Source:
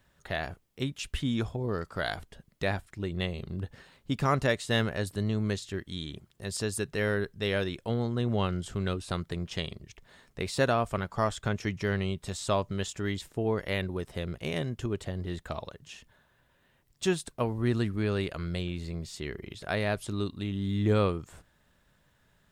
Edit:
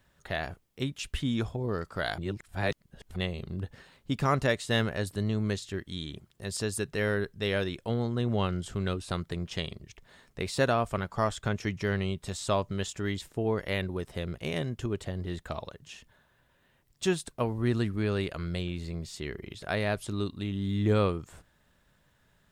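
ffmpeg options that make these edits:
-filter_complex "[0:a]asplit=3[s0][s1][s2];[s0]atrim=end=2.182[s3];[s1]atrim=start=2.178:end=3.162,asetpts=PTS-STARTPTS,areverse[s4];[s2]atrim=start=3.158[s5];[s3][s4]acrossfade=d=0.004:c1=hsin:c2=hsin[s6];[s6][s5]acrossfade=d=0.004:c1=hsin:c2=hsin"

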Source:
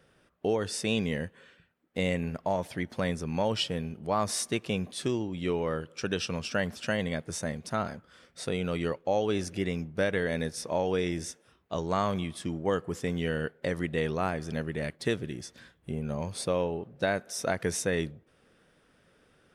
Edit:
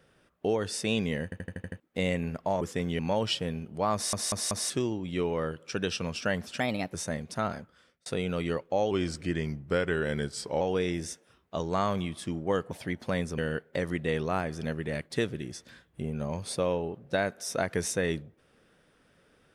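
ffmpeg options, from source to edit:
-filter_complex "[0:a]asplit=21[s0][s1][s2][s3][s4][s5][s6][s7][s8][s9][s10][s11][s12][s13][s14][s15][s16][s17][s18][s19][s20];[s0]atrim=end=1.322[s21];[s1]atrim=start=1.238:end=1.322[s22];[s2]atrim=start=1.238:end=1.322[s23];[s3]atrim=start=1.238:end=1.322[s24];[s4]atrim=start=1.238:end=1.322[s25];[s5]atrim=start=1.238:end=1.322[s26];[s6]atrim=start=1.238:end=1.322[s27];[s7]atrim=start=1.798:end=2.612[s28];[s8]atrim=start=12.888:end=13.272[s29];[s9]atrim=start=3.278:end=4.422[s30];[s10]atrim=start=4.228:end=4.422[s31];[s11]atrim=start=4.228:end=4.422[s32];[s12]atrim=start=4.228:end=4.422[s33];[s13]atrim=start=4.988:end=6.894[s34];[s14]atrim=start=6.89:end=7.29,asetpts=PTS-STARTPTS,asetrate=52038,aresample=44100,atrim=end_sample=14949,asetpts=PTS-STARTPTS[s35];[s15]atrim=start=7.286:end=8.41,asetpts=PTS-STARTPTS,afade=t=out:st=0.644:d=0.48[s36];[s16]atrim=start=8.41:end=9.264,asetpts=PTS-STARTPTS,afade=t=in:d=0.004:c=hsin[s37];[s17]atrim=start=9.26:end=10.79,asetpts=PTS-STARTPTS,asetrate=39690,aresample=44100[s38];[s18]atrim=start=10.786:end=12.892[s39];[s19]atrim=start=2.608:end=3.282[s40];[s20]atrim=start=13.268[s41];[s21][s22]acrossfade=d=0.004:c1=hsin:c2=hsin[s42];[s42][s23]acrossfade=d=0.004:c1=hsin:c2=hsin[s43];[s43][s24]acrossfade=d=0.004:c1=hsin:c2=hsin[s44];[s44][s25]acrossfade=d=0.004:c1=hsin:c2=hsin[s45];[s45][s26]acrossfade=d=0.004:c1=hsin:c2=hsin[s46];[s46][s27]acrossfade=d=0.004:c1=hsin:c2=hsin[s47];[s47][s28]acrossfade=d=0.004:c1=hsin:c2=hsin[s48];[s48][s29]acrossfade=d=0.004:c1=hsin:c2=hsin[s49];[s49][s30]acrossfade=d=0.004:c1=hsin:c2=hsin[s50];[s50][s31]acrossfade=d=0.004:c1=hsin:c2=hsin[s51];[s51][s32]acrossfade=d=0.004:c1=hsin:c2=hsin[s52];[s52][s33]acrossfade=d=0.004:c1=hsin:c2=hsin[s53];[s53][s34]acrossfade=d=0.004:c1=hsin:c2=hsin[s54];[s54][s35]acrossfade=d=0.004:c1=hsin:c2=hsin[s55];[s36][s37]concat=n=2:v=0:a=1[s56];[s55][s56]acrossfade=d=0.004:c1=hsin:c2=hsin[s57];[s57][s38]acrossfade=d=0.004:c1=hsin:c2=hsin[s58];[s58][s39]acrossfade=d=0.004:c1=hsin:c2=hsin[s59];[s59][s40]acrossfade=d=0.004:c1=hsin:c2=hsin[s60];[s60][s41]acrossfade=d=0.004:c1=hsin:c2=hsin"

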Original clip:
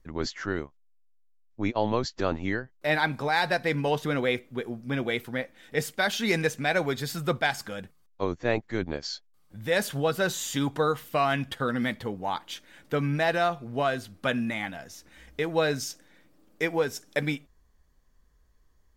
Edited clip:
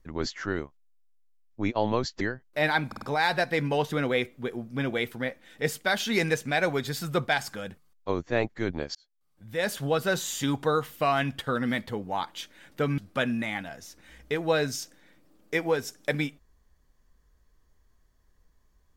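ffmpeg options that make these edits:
-filter_complex "[0:a]asplit=7[s0][s1][s2][s3][s4][s5][s6];[s0]atrim=end=2.212[s7];[s1]atrim=start=2.488:end=3.202[s8];[s2]atrim=start=3.148:end=3.202[s9];[s3]atrim=start=3.148:end=3.202[s10];[s4]atrim=start=3.148:end=9.08,asetpts=PTS-STARTPTS,afade=t=out:st=5.928:d=0.004:c=hsin[s11];[s5]atrim=start=9.08:end=13.112,asetpts=PTS-STARTPTS,afade=t=in:d=0.95[s12];[s6]atrim=start=14.058[s13];[s7][s8]acrossfade=d=0.004:c1=hsin:c2=hsin[s14];[s14][s9]acrossfade=d=0.004:c1=hsin:c2=hsin[s15];[s15][s10]acrossfade=d=0.004:c1=hsin:c2=hsin[s16];[s11][s12]concat=n=2:v=0:a=1[s17];[s16][s17]acrossfade=d=0.004:c1=hsin:c2=hsin[s18];[s18][s13]acrossfade=d=0.004:c1=hsin:c2=hsin"

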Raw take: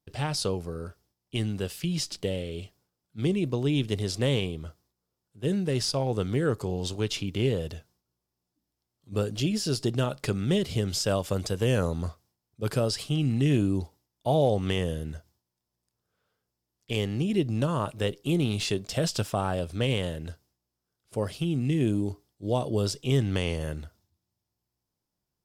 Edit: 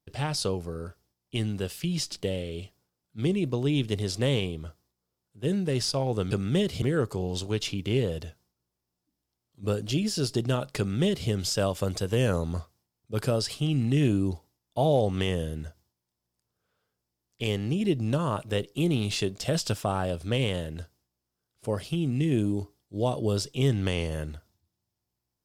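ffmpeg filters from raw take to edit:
-filter_complex "[0:a]asplit=3[s0][s1][s2];[s0]atrim=end=6.312[s3];[s1]atrim=start=10.268:end=10.782[s4];[s2]atrim=start=6.308[s5];[s3][s4]acrossfade=d=0.004:c1=hsin:c2=hsin[s6];[s6][s5]acrossfade=d=0.004:c1=hsin:c2=hsin"

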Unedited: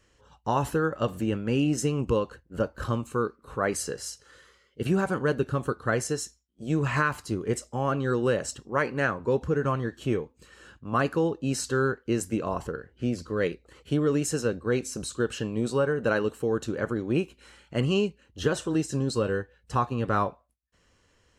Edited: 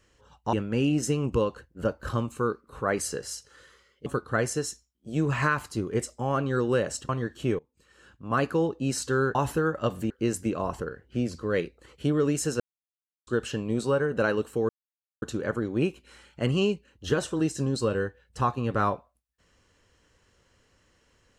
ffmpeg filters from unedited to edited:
-filter_complex "[0:a]asplit=10[s0][s1][s2][s3][s4][s5][s6][s7][s8][s9];[s0]atrim=end=0.532[s10];[s1]atrim=start=1.278:end=4.812[s11];[s2]atrim=start=5.598:end=8.632[s12];[s3]atrim=start=9.708:end=10.21,asetpts=PTS-STARTPTS,afade=t=out:st=0.498:d=0.004:c=hsin:silence=0.0749894[s13];[s4]atrim=start=10.21:end=11.972,asetpts=PTS-STARTPTS,afade=t=in:d=0.84:silence=0.0749894[s14];[s5]atrim=start=0.528:end=1.282[s15];[s6]atrim=start=11.968:end=14.47,asetpts=PTS-STARTPTS,afade=t=out:st=2.498:d=0.004:c=hsin[s16];[s7]atrim=start=14.47:end=15.14,asetpts=PTS-STARTPTS,volume=0[s17];[s8]atrim=start=15.14:end=16.56,asetpts=PTS-STARTPTS,afade=t=in:d=0.004:c=hsin,afade=t=out:st=1.416:d=0.004:c=hsin,apad=pad_dur=0.53[s18];[s9]atrim=start=16.56,asetpts=PTS-STARTPTS,afade=t=in:d=0.004:c=hsin[s19];[s10][s11]acrossfade=d=0.004:c1=hsin:c2=hsin[s20];[s20][s12]acrossfade=d=0.004:c1=hsin:c2=hsin[s21];[s13][s14]concat=n=2:v=0:a=1[s22];[s21][s22]acrossfade=d=0.004:c1=hsin:c2=hsin[s23];[s23][s15]acrossfade=d=0.004:c1=hsin:c2=hsin[s24];[s16][s17][s18][s19]concat=n=4:v=0:a=1[s25];[s24][s25]acrossfade=d=0.004:c1=hsin:c2=hsin"

